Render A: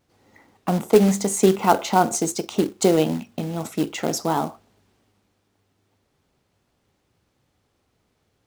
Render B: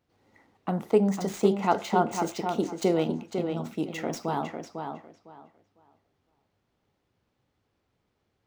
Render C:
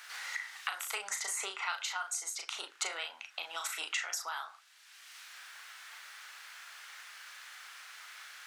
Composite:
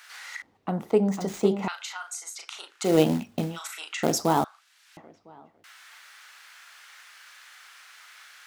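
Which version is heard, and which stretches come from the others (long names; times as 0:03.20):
C
0:00.42–0:01.68: punch in from B
0:02.89–0:03.51: punch in from A, crossfade 0.16 s
0:04.03–0:04.44: punch in from A
0:04.97–0:05.64: punch in from B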